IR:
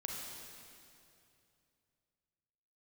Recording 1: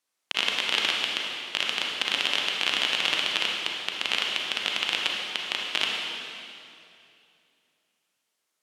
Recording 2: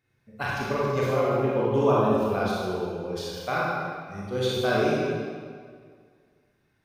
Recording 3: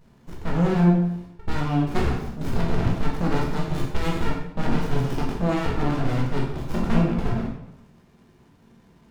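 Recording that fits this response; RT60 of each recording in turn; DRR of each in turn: 1; 2.6, 1.9, 0.85 s; -1.5, -6.5, -3.0 dB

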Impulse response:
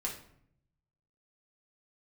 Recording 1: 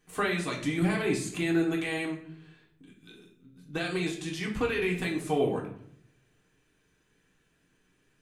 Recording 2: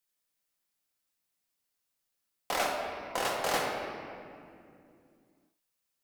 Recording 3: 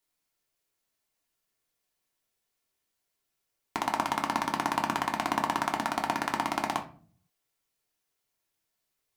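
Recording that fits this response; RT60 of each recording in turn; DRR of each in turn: 1; 0.65, 2.5, 0.45 s; -3.0, -1.5, 1.5 dB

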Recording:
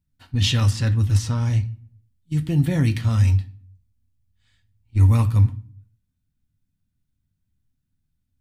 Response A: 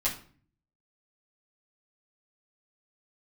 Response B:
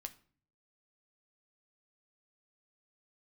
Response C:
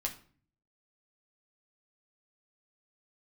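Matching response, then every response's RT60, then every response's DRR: B; 0.45, 0.45, 0.45 s; -8.0, 7.0, 0.5 dB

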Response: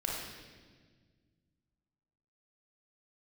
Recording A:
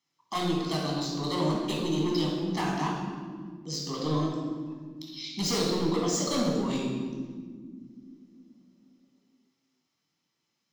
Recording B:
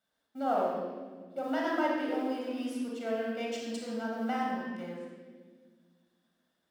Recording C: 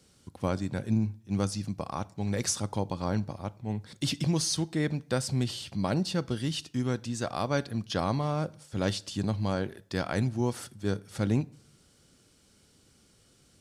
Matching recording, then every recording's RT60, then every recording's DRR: B; not exponential, 1.6 s, 0.55 s; -3.0, -3.0, 14.5 dB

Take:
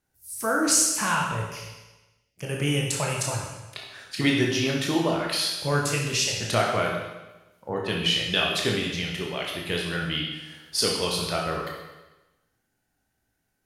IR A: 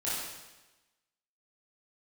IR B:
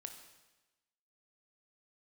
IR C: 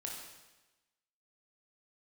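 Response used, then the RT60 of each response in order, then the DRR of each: C; 1.1, 1.1, 1.1 s; -10.5, 5.0, -2.0 dB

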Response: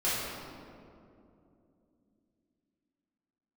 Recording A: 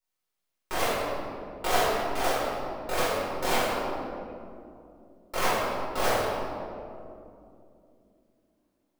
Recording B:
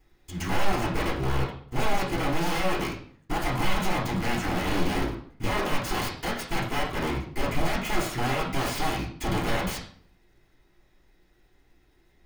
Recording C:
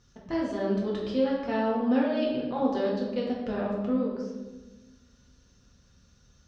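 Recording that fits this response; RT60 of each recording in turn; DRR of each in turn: A; 2.7, 0.55, 1.2 s; -11.0, -9.0, -4.0 dB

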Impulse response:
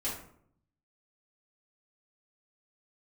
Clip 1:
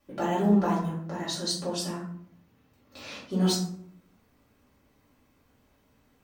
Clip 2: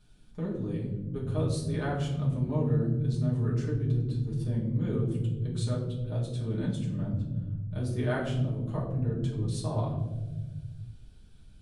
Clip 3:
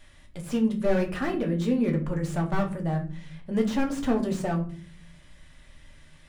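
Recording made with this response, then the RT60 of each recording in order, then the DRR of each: 1; 0.65, 1.3, 0.45 s; -9.0, -6.0, 1.5 dB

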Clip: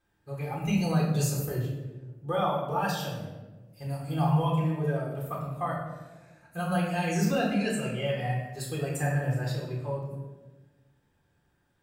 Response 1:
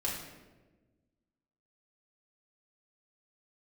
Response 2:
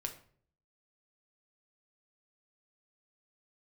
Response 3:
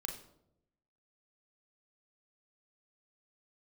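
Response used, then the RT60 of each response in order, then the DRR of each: 1; 1.3, 0.55, 0.80 s; -3.5, 4.0, 2.0 dB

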